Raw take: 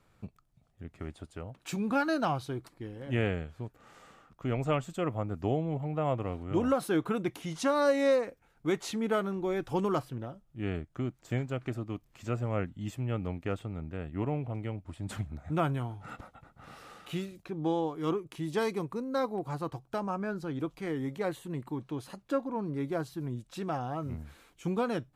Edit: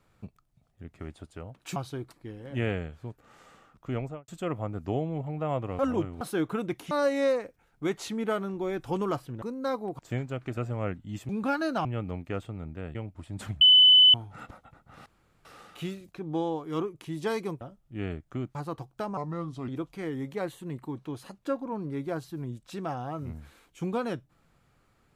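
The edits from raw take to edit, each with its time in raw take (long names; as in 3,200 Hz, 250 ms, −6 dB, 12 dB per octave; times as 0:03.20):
0:01.76–0:02.32: move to 0:13.01
0:04.48–0:04.84: fade out and dull
0:06.35–0:06.77: reverse
0:07.47–0:07.74: remove
0:10.25–0:11.19: swap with 0:18.92–0:19.49
0:11.77–0:12.29: remove
0:14.11–0:14.65: remove
0:15.31–0:15.84: beep over 3,010 Hz −13 dBFS
0:16.76: splice in room tone 0.39 s
0:20.11–0:20.52: play speed 80%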